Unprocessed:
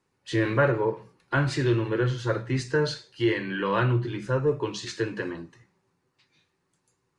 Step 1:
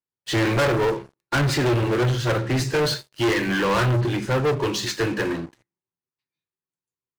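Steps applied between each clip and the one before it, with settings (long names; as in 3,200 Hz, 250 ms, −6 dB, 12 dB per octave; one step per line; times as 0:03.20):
hum removal 67.72 Hz, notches 9
leveller curve on the samples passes 5
expander for the loud parts 1.5 to 1, over −35 dBFS
level −4.5 dB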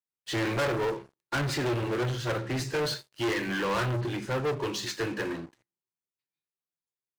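low-shelf EQ 170 Hz −4 dB
level −7 dB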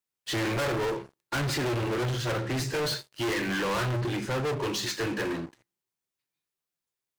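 soft clipping −32 dBFS, distortion −13 dB
level +5.5 dB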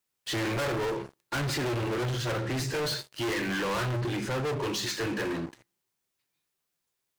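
brickwall limiter −34.5 dBFS, peak gain reduction 8 dB
level +6.5 dB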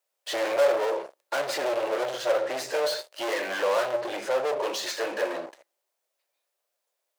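high-pass with resonance 580 Hz, resonance Q 4.9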